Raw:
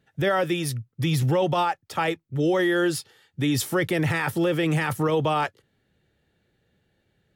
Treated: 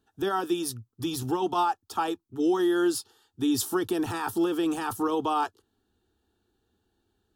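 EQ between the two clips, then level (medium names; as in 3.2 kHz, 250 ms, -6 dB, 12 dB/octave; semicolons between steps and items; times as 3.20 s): static phaser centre 560 Hz, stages 6; 0.0 dB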